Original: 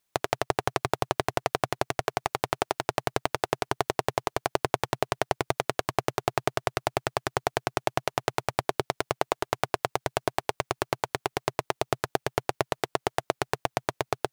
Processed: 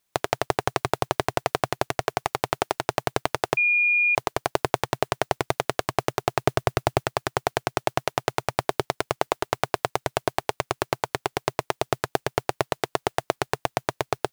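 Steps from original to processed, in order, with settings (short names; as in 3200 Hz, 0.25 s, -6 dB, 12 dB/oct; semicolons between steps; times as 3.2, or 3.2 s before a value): 6.47–7 low shelf 380 Hz +8 dB; modulation noise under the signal 30 dB; 3.57–4.15 bleep 2430 Hz -20 dBFS; gain +2.5 dB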